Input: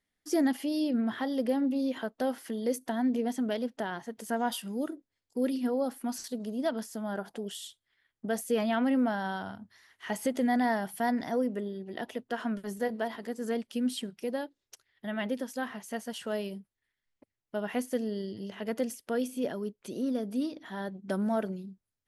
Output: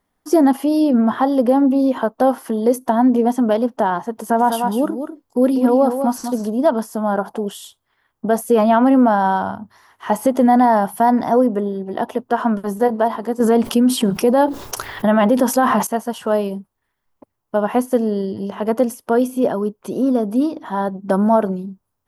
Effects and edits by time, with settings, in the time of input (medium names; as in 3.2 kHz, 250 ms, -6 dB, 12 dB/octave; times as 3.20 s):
4.10–6.50 s: delay 197 ms -8 dB
13.40–15.87 s: level flattener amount 70%
whole clip: graphic EQ 1/2/4/8 kHz +10/-9/-7/-6 dB; loudness maximiser +18 dB; trim -4.5 dB